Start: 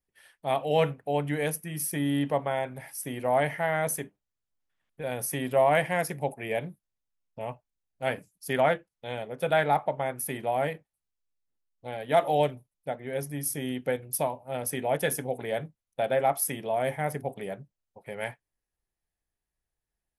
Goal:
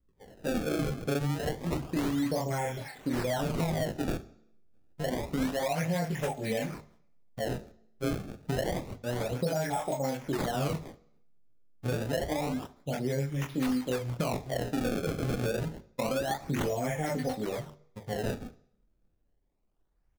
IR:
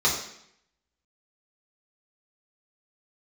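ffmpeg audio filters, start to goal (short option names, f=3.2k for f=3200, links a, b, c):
-filter_complex "[0:a]acrossover=split=680|3300[a][b][c];[b]adelay=40[d];[c]adelay=190[e];[a][d][e]amix=inputs=3:normalize=0,aphaser=in_gain=1:out_gain=1:delay=4:decay=0.58:speed=0.84:type=sinusoidal,asplit=2[f][g];[g]alimiter=limit=-19.5dB:level=0:latency=1:release=34,volume=1dB[h];[f][h]amix=inputs=2:normalize=0,flanger=delay=18.5:depth=6.7:speed=0.17,acrusher=samples=26:mix=1:aa=0.000001:lfo=1:lforange=41.6:lforate=0.28,acrossover=split=820|1800[i][j][k];[i]acompressor=threshold=-29dB:ratio=4[l];[j]acompressor=threshold=-39dB:ratio=4[m];[k]acompressor=threshold=-34dB:ratio=4[n];[l][m][n]amix=inputs=3:normalize=0,lowshelf=f=470:g=9,bandreject=f=50:t=h:w=6,bandreject=f=100:t=h:w=6,bandreject=f=150:t=h:w=6,asplit=2[o][p];[1:a]atrim=start_sample=2205,adelay=40[q];[p][q]afir=irnorm=-1:irlink=0,volume=-33dB[r];[o][r]amix=inputs=2:normalize=0,acompressor=threshold=-27dB:ratio=2,volume=-2dB"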